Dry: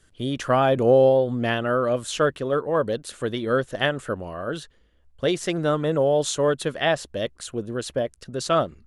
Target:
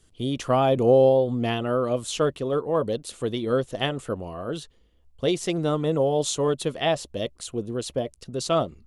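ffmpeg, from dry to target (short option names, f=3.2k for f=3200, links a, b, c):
-af "equalizer=f=1.6k:t=o:w=0.58:g=-11,bandreject=f=580:w=13"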